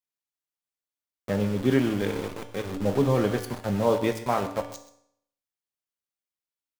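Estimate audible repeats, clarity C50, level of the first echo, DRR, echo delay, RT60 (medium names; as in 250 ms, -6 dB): 1, 10.0 dB, -17.0 dB, 6.0 dB, 129 ms, 0.70 s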